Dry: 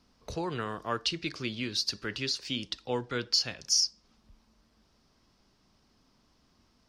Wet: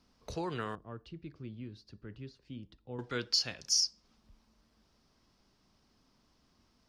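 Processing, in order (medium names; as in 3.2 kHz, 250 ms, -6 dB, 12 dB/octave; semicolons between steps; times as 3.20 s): 0.75–2.99 s: FFT filter 110 Hz 0 dB, 3.2 kHz -23 dB, 5.6 kHz -30 dB; trim -3 dB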